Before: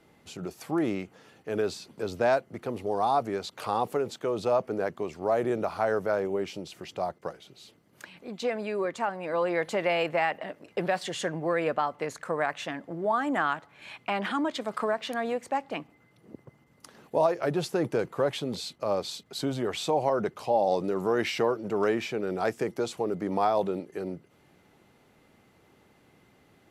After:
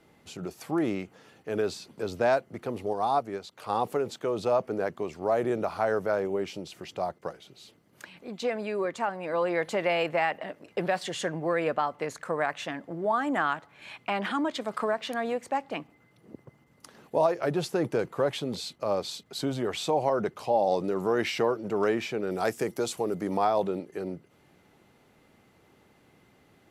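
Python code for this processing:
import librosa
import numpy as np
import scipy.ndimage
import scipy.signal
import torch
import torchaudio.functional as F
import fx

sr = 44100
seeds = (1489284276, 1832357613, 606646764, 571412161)

y = fx.upward_expand(x, sr, threshold_db=-36.0, expansion=1.5, at=(2.93, 3.7))
y = fx.high_shelf(y, sr, hz=6600.0, db=12.0, at=(22.31, 23.37))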